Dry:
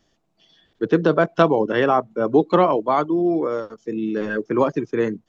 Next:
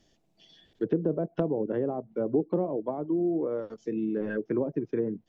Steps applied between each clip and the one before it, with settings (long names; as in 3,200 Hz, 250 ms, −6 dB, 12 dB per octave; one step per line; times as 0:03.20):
downward compressor 1.5 to 1, threshold −35 dBFS, peak gain reduction 9 dB
treble cut that deepens with the level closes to 540 Hz, closed at −22 dBFS
parametric band 1,200 Hz −9 dB 0.9 octaves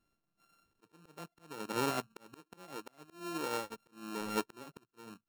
samples sorted by size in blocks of 32 samples
volume swells 697 ms
expander for the loud parts 1.5 to 1, over −58 dBFS
level +1 dB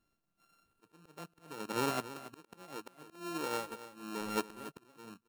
single-tap delay 280 ms −14 dB